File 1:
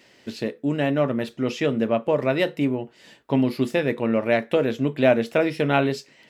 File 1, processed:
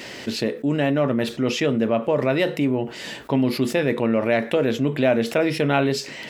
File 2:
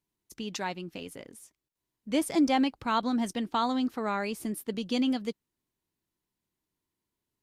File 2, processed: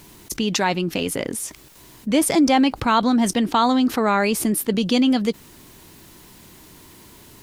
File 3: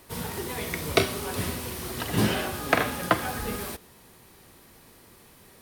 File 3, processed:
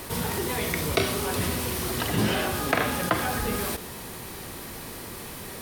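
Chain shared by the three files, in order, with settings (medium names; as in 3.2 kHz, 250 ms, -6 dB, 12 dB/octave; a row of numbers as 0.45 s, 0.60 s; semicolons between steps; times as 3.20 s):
level flattener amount 50%; peak normalisation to -6 dBFS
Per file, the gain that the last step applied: -2.0 dB, +7.0 dB, -3.5 dB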